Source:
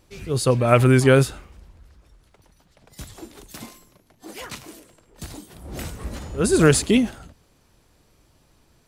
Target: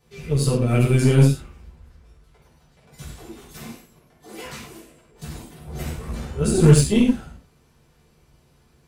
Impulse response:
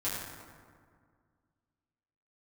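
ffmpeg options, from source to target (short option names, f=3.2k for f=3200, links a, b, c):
-filter_complex "[0:a]acrossover=split=390|3000[a][b][c];[b]acompressor=threshold=-35dB:ratio=3[d];[a][d][c]amix=inputs=3:normalize=0[e];[1:a]atrim=start_sample=2205,afade=t=out:st=0.24:d=0.01,atrim=end_sample=11025,asetrate=66150,aresample=44100[f];[e][f]afir=irnorm=-1:irlink=0,aeval=exprs='1.06*(cos(1*acos(clip(val(0)/1.06,-1,1)))-cos(1*PI/2))+0.0473*(cos(8*acos(clip(val(0)/1.06,-1,1)))-cos(8*PI/2))':c=same,volume=-1.5dB"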